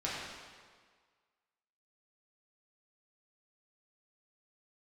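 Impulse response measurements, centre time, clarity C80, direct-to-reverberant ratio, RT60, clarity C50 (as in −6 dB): 104 ms, 0.5 dB, −7.5 dB, 1.7 s, −1.5 dB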